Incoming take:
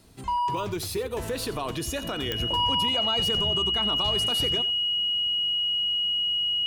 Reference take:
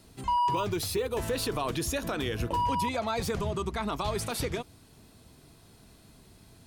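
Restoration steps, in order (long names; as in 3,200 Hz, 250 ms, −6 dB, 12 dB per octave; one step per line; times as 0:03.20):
click removal
notch filter 2,900 Hz, Q 30
echo removal 88 ms −16 dB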